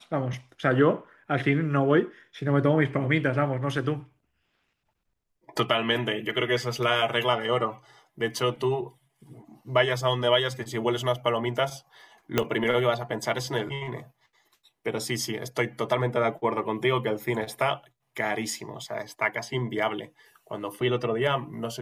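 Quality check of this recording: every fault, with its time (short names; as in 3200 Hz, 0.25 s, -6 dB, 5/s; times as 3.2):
12.38 pop -7 dBFS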